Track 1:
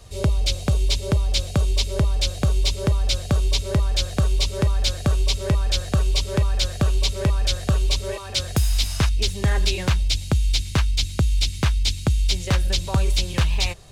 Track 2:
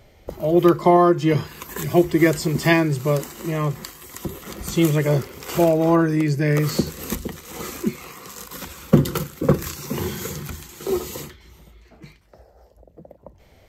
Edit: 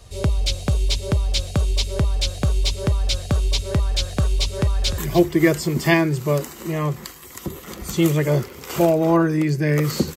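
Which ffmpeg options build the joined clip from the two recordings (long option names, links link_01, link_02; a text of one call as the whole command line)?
ffmpeg -i cue0.wav -i cue1.wav -filter_complex "[0:a]apad=whole_dur=10.16,atrim=end=10.16,atrim=end=4.982[link_01];[1:a]atrim=start=1.768:end=6.95[link_02];[link_01][link_02]acrossfade=duration=0.004:curve1=hsin:curve2=hsin,asplit=2[link_03][link_04];[link_04]afade=type=in:start_time=4.53:duration=0.01,afade=type=out:start_time=4.98:duration=0.01,aecho=0:1:300|600:0.266073|0.0399109[link_05];[link_03][link_05]amix=inputs=2:normalize=0" out.wav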